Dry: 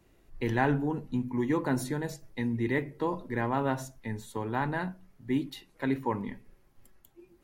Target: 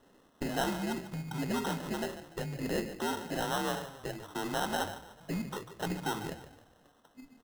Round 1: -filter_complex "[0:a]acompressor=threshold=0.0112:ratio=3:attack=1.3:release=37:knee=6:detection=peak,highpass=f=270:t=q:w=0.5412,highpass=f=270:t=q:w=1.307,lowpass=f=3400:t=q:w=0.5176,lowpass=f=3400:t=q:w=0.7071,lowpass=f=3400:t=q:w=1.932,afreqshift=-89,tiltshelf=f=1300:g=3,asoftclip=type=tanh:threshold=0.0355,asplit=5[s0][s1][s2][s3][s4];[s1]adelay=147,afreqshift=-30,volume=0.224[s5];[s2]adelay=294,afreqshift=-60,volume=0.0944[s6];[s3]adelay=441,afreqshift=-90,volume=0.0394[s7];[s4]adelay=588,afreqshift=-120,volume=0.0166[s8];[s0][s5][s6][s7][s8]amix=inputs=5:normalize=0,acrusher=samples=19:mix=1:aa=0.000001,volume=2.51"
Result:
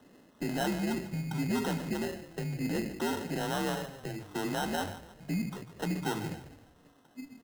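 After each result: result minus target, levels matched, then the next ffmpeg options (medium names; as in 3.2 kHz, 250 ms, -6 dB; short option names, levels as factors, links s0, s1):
compression: peak gain reduction +4.5 dB; 1 kHz band -3.0 dB
-filter_complex "[0:a]acompressor=threshold=0.0237:ratio=3:attack=1.3:release=37:knee=6:detection=peak,highpass=f=270:t=q:w=0.5412,highpass=f=270:t=q:w=1.307,lowpass=f=3400:t=q:w=0.5176,lowpass=f=3400:t=q:w=0.7071,lowpass=f=3400:t=q:w=1.932,afreqshift=-89,tiltshelf=f=1300:g=3,asoftclip=type=tanh:threshold=0.0355,asplit=5[s0][s1][s2][s3][s4];[s1]adelay=147,afreqshift=-30,volume=0.224[s5];[s2]adelay=294,afreqshift=-60,volume=0.0944[s6];[s3]adelay=441,afreqshift=-90,volume=0.0394[s7];[s4]adelay=588,afreqshift=-120,volume=0.0166[s8];[s0][s5][s6][s7][s8]amix=inputs=5:normalize=0,acrusher=samples=19:mix=1:aa=0.000001,volume=2.51"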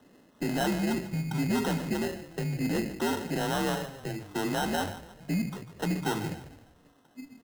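1 kHz band -3.0 dB
-filter_complex "[0:a]acompressor=threshold=0.0237:ratio=3:attack=1.3:release=37:knee=6:detection=peak,highpass=f=270:t=q:w=0.5412,highpass=f=270:t=q:w=1.307,lowpass=f=3400:t=q:w=0.5176,lowpass=f=3400:t=q:w=0.7071,lowpass=f=3400:t=q:w=1.932,afreqshift=-89,tiltshelf=f=1300:g=-5.5,asoftclip=type=tanh:threshold=0.0355,asplit=5[s0][s1][s2][s3][s4];[s1]adelay=147,afreqshift=-30,volume=0.224[s5];[s2]adelay=294,afreqshift=-60,volume=0.0944[s6];[s3]adelay=441,afreqshift=-90,volume=0.0394[s7];[s4]adelay=588,afreqshift=-120,volume=0.0166[s8];[s0][s5][s6][s7][s8]amix=inputs=5:normalize=0,acrusher=samples=19:mix=1:aa=0.000001,volume=2.51"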